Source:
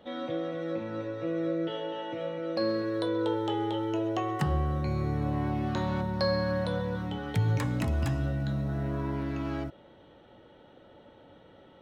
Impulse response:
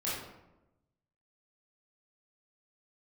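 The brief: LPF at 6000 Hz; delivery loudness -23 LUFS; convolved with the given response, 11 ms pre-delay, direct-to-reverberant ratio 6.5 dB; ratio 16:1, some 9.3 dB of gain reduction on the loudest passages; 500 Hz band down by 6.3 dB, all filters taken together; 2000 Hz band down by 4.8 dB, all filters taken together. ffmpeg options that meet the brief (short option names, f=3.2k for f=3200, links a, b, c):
-filter_complex "[0:a]lowpass=6k,equalizer=f=500:t=o:g=-7.5,equalizer=f=2k:t=o:g=-6,acompressor=threshold=-32dB:ratio=16,asplit=2[a][b];[1:a]atrim=start_sample=2205,adelay=11[c];[b][c]afir=irnorm=-1:irlink=0,volume=-12dB[d];[a][d]amix=inputs=2:normalize=0,volume=13dB"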